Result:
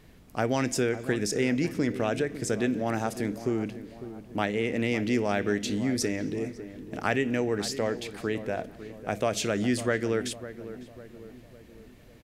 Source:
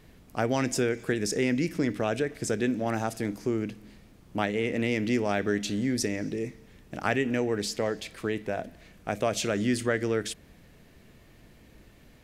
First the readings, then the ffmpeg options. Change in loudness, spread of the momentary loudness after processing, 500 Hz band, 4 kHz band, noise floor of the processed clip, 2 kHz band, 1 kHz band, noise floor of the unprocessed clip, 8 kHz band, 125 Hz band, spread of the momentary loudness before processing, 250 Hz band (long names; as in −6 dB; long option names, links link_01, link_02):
0.0 dB, 15 LU, +0.5 dB, 0.0 dB, −52 dBFS, 0.0 dB, 0.0 dB, −56 dBFS, 0.0 dB, +0.5 dB, 9 LU, +0.5 dB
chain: -filter_complex "[0:a]asplit=2[link_01][link_02];[link_02]adelay=552,lowpass=frequency=1200:poles=1,volume=-12.5dB,asplit=2[link_03][link_04];[link_04]adelay=552,lowpass=frequency=1200:poles=1,volume=0.52,asplit=2[link_05][link_06];[link_06]adelay=552,lowpass=frequency=1200:poles=1,volume=0.52,asplit=2[link_07][link_08];[link_08]adelay=552,lowpass=frequency=1200:poles=1,volume=0.52,asplit=2[link_09][link_10];[link_10]adelay=552,lowpass=frequency=1200:poles=1,volume=0.52[link_11];[link_01][link_03][link_05][link_07][link_09][link_11]amix=inputs=6:normalize=0"